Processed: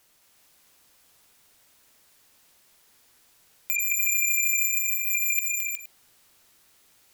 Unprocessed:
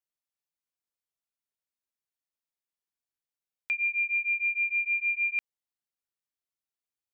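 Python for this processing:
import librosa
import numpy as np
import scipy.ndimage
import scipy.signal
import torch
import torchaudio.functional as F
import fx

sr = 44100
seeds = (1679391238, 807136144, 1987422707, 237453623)

p1 = fx.fold_sine(x, sr, drive_db=16, ceiling_db=-22.0)
p2 = fx.over_compress(p1, sr, threshold_db=-31.0, ratio=-1.0)
p3 = fx.fixed_phaser(p2, sr, hz=2000.0, stages=6, at=(4.68, 5.1))
p4 = p3 + fx.echo_multitap(p3, sr, ms=(215, 300, 362, 467), db=(-4.5, -13.5, -4.5, -16.0), dry=0)
y = p4 * 10.0 ** (5.0 / 20.0)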